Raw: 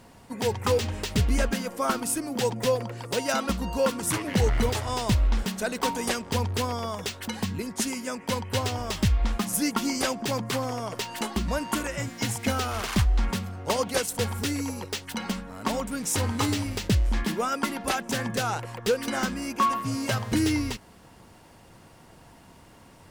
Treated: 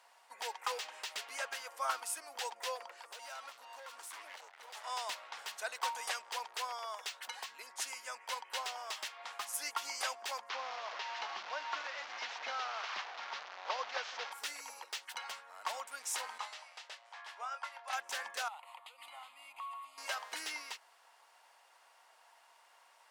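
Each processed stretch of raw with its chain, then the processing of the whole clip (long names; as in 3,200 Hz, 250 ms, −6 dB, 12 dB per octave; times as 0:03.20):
0:02.96–0:04.84: downward compressor 4 to 1, threshold −31 dBFS + gain into a clipping stage and back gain 33.5 dB
0:10.49–0:14.32: linear delta modulator 32 kbit/s, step −26 dBFS + low-pass filter 3,200 Hz 6 dB per octave + parametric band 110 Hz +12.5 dB 1.3 octaves
0:16.38–0:17.93: four-pole ladder high-pass 500 Hz, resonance 30% + high-frequency loss of the air 56 metres + double-tracking delay 26 ms −9 dB
0:18.48–0:19.98: variable-slope delta modulation 64 kbit/s + downward compressor, threshold −33 dBFS + phaser with its sweep stopped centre 1,600 Hz, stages 6
whole clip: high-pass filter 730 Hz 24 dB per octave; high-shelf EQ 8,200 Hz −6.5 dB; level −7 dB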